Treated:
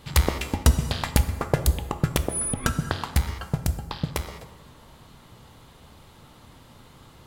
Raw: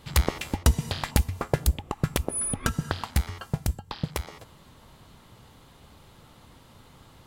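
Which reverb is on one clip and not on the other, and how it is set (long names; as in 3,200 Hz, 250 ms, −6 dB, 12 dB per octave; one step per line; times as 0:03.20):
dense smooth reverb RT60 1.5 s, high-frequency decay 0.55×, DRR 9 dB
level +2 dB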